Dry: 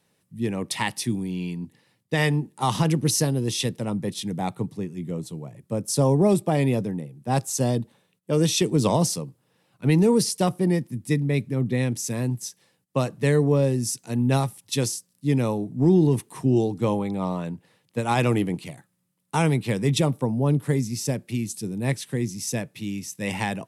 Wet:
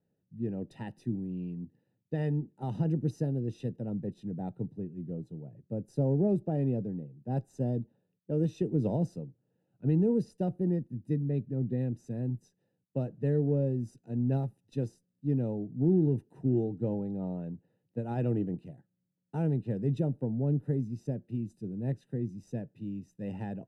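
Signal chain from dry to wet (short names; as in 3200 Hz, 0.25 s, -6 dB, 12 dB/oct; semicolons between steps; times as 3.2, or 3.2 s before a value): added harmonics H 8 -39 dB, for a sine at -10 dBFS; running mean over 40 samples; gain -6.5 dB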